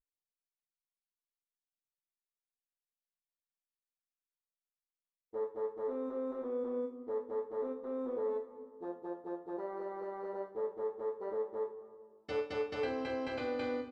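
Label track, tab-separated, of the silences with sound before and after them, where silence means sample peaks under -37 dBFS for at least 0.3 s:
8.420000	8.830000	silence
11.660000	12.290000	silence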